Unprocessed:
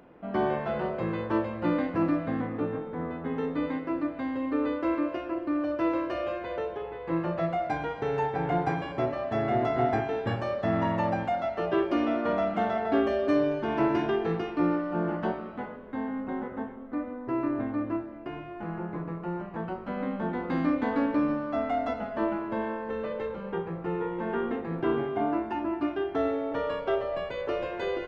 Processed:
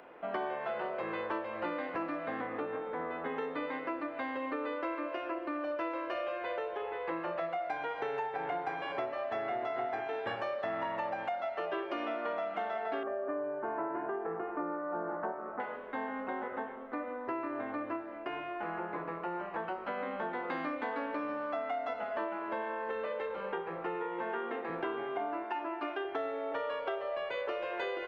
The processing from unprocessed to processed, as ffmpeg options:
-filter_complex "[0:a]asettb=1/sr,asplit=3[s0][s1][s2];[s0]atrim=end=13.034[s3];[s1]atrim=start=13.03:end=15.6,asetpts=PTS-STARTPTS,afade=t=in:d=0.004:c=qsin,afade=t=out:st=2.566:d=0.004:c=qsin,lowpass=f=1500:w=0.5412,lowpass=f=1500:w=1.3066[s4];[s2]atrim=start=15.596[s5];[s3][s4]acrossfade=d=0.004:c1=hsin:c2=qsin[s6];[s6][s5]acrossfade=d=0.004:c1=qsin:c2=hsin,asettb=1/sr,asplit=3[s7][s8][s9];[s7]atrim=end=24.224[s10];[s8]atrim=start=24.22:end=24.7,asetpts=PTS-STARTPTS,afade=t=in:d=0.004:c=qsin,afade=t=out:st=0.476:d=0.004:c=qsin,highpass=f=140:w=0.5412,highpass=f=140:w=1.3066[s11];[s9]atrim=start=24.696[s12];[s10][s11]acrossfade=d=0.004:c1=hsin:c2=qsin[s13];[s13][s12]acrossfade=d=0.004:c1=qsin:c2=hsin,asettb=1/sr,asplit=3[s14][s15][s16];[s14]atrim=end=25.444[s17];[s15]atrim=start=25.44:end=26.05,asetpts=PTS-STARTPTS,afade=t=in:d=0.004:c=qsin,afade=t=out:st=0.606:d=0.004:c=qsin,highpass=300[s18];[s16]atrim=start=26.046[s19];[s17][s18]acrossfade=d=0.004:c1=hsin:c2=qsin[s20];[s20][s19]acrossfade=d=0.004:c1=qsin:c2=hsin,acrossover=split=390 3200:gain=0.112 1 0.158[s21][s22][s23];[s21][s22][s23]amix=inputs=3:normalize=0,acompressor=threshold=0.0126:ratio=6,highshelf=f=3100:g=10.5,volume=1.58"

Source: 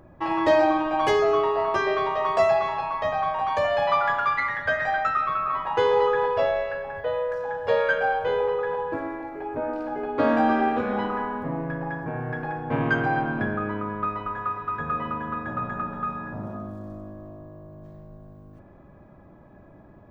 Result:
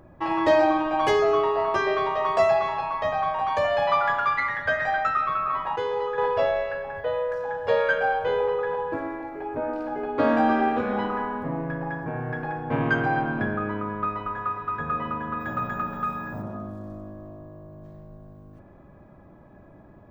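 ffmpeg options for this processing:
-filter_complex "[0:a]asplit=3[s0][s1][s2];[s0]afade=t=out:st=15.39:d=0.02[s3];[s1]aemphasis=mode=production:type=75kf,afade=t=in:st=15.39:d=0.02,afade=t=out:st=16.41:d=0.02[s4];[s2]afade=t=in:st=16.41:d=0.02[s5];[s3][s4][s5]amix=inputs=3:normalize=0,asplit=3[s6][s7][s8];[s6]atrim=end=5.762[s9];[s7]atrim=start=5.758:end=6.182,asetpts=PTS-STARTPTS,volume=0.447[s10];[s8]atrim=start=6.178[s11];[s9][s10]acrossfade=d=0.004:c1=hsin:c2=hsin[s12];[s12][s11]acrossfade=d=0.004:c1=hsin:c2=hsin"

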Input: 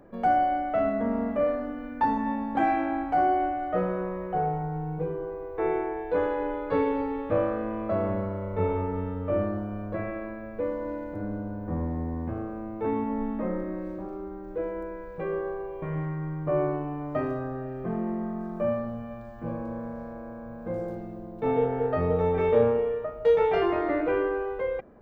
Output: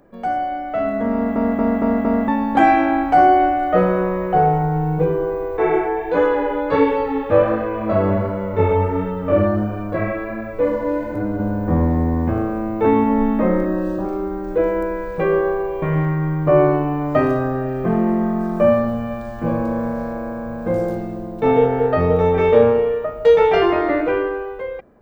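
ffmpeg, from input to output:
-filter_complex "[0:a]asettb=1/sr,asplit=3[s0][s1][s2];[s0]atrim=end=5.574[s3];[s1]atrim=start=5.57:end=11.4,asetpts=PTS-STARTPTS,afade=t=in:d=0.004:c=qsin,afade=t=out:st=5.826:d=0.004:c=qsin,flanger=delay=16:depth=4.5:speed=1.4[s4];[s2]atrim=start=11.396[s5];[s3][s4]acrossfade=d=0.004:c1=hsin:c2=qsin[s6];[s6][s5]acrossfade=d=0.004:c1=qsin:c2=hsin,asettb=1/sr,asplit=3[s7][s8][s9];[s7]atrim=end=13.654[s10];[s8]atrim=start=13.65:end=14.05,asetpts=PTS-STARTPTS,afade=t=in:d=0.004:c=qsin,afade=t=out:st=0.396:d=0.004:c=qsin,asuperstop=centerf=2200:order=20:qfactor=4.4[s11];[s9]atrim=start=14.046[s12];[s10][s11]acrossfade=d=0.004:c1=hsin:c2=qsin[s13];[s13][s12]acrossfade=d=0.004:c1=qsin:c2=hsin,asplit=6[s14][s15][s16][s17][s18][s19];[s14]atrim=end=1.362[s20];[s15]atrim=start=1.128:end=1.362[s21];[s16]atrim=start=1.128:end=1.362[s22];[s17]atrim=start=1.128:end=1.362[s23];[s18]atrim=start=1.128:end=1.362[s24];[s19]atrim=start=2.278[s25];[s20][s21]acrossfade=d=0.004:c1=hsin:c2=hsin[s26];[s26][s22]acrossfade=d=0.004:c1=hsin:c2=hsin[s27];[s27][s23]acrossfade=d=0.004:c1=hsin:c2=hsin[s28];[s28][s24]acrossfade=d=0.004:c1=hsin:c2=hsin[s29];[s29][s25]acrossfade=d=0.004:c1=hsin:c2=hsin,highshelf=f=3300:g=7.5,bandreject=f=60:t=h:w=6,bandreject=f=120:t=h:w=6,dynaudnorm=f=130:g=17:m=4.73"

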